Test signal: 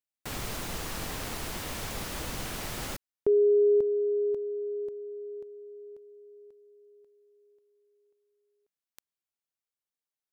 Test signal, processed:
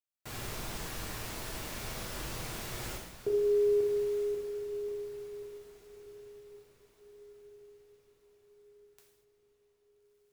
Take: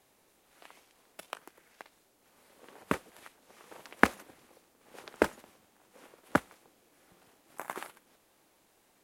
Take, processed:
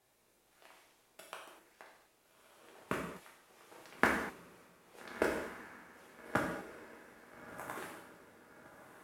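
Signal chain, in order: on a send: diffused feedback echo 1.326 s, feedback 44%, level -12.5 dB; on the sum: non-linear reverb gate 0.27 s falling, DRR -2.5 dB; gain -8.5 dB

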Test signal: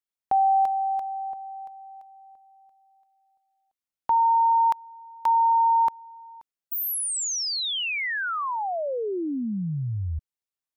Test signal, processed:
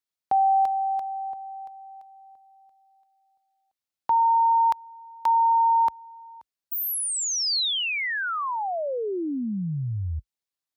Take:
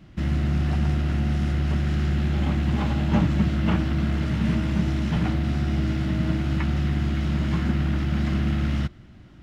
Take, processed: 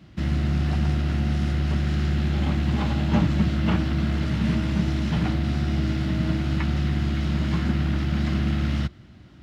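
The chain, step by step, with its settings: HPF 49 Hz 24 dB/oct; bell 4300 Hz +4 dB 0.76 oct

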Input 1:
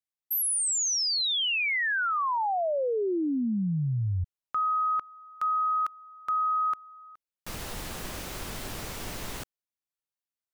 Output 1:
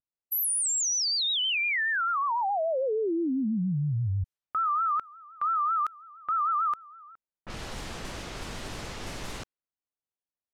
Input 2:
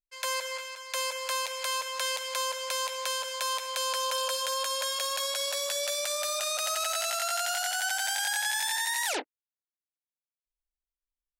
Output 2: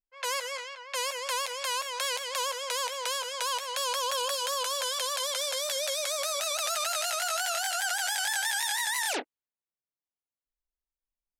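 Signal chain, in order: wow and flutter 6 Hz 120 cents; low-pass opened by the level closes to 990 Hz, open at -30 dBFS

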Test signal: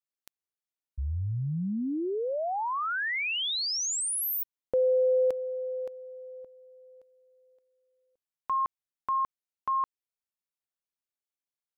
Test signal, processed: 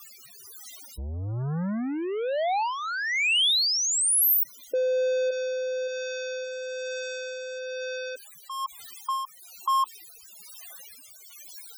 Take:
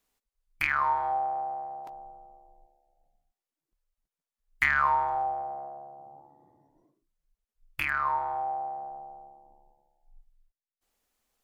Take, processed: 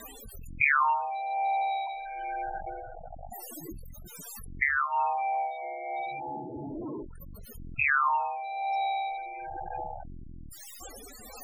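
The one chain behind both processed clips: zero-crossing step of -29 dBFS; loudest bins only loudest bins 16; tilt +2 dB/oct; in parallel at -3 dB: compressor, threshold -33 dBFS; on the sum: rotary speaker horn 1.1 Hz

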